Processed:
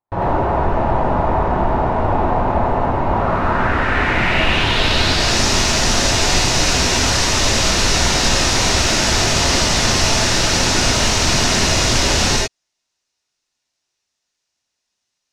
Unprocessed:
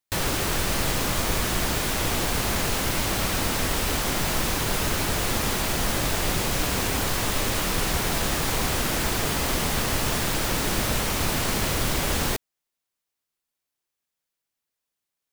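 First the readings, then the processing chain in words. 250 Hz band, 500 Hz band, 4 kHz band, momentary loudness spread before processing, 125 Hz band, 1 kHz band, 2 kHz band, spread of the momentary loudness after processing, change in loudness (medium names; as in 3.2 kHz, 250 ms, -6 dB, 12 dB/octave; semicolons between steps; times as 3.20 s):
+8.0 dB, +10.0 dB, +11.5 dB, 0 LU, +8.5 dB, +11.0 dB, +9.5 dB, 4 LU, +9.0 dB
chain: gated-style reverb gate 120 ms rising, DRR -4.5 dB; low-pass sweep 890 Hz -> 5.8 kHz, 3.10–5.43 s; trim +3 dB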